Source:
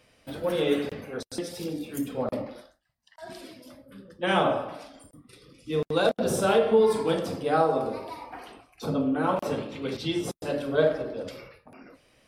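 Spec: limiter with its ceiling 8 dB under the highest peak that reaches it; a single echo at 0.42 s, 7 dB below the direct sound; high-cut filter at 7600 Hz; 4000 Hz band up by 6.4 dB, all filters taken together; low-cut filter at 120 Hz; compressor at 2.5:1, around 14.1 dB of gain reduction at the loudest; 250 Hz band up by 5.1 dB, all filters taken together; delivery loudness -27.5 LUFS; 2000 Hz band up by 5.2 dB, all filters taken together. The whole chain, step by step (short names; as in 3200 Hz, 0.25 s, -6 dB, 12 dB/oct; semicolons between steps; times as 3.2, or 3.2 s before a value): HPF 120 Hz; LPF 7600 Hz; bell 250 Hz +6.5 dB; bell 2000 Hz +6 dB; bell 4000 Hz +6 dB; compressor 2.5:1, threshold -36 dBFS; limiter -27.5 dBFS; echo 0.42 s -7 dB; gain +10 dB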